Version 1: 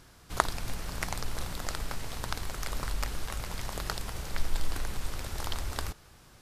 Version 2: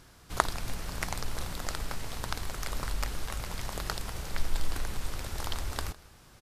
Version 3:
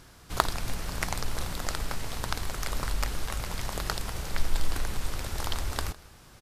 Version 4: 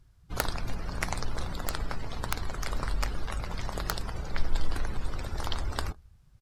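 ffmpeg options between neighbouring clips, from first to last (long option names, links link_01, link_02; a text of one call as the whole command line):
ffmpeg -i in.wav -af "aecho=1:1:157:0.075" out.wav
ffmpeg -i in.wav -af "aeval=exprs='0.501*(abs(mod(val(0)/0.501+3,4)-2)-1)':channel_layout=same,volume=3dB" out.wav
ffmpeg -i in.wav -af "afftdn=noise_reduction=21:noise_floor=-42,aeval=exprs='(mod(2.99*val(0)+1,2)-1)/2.99':channel_layout=same" out.wav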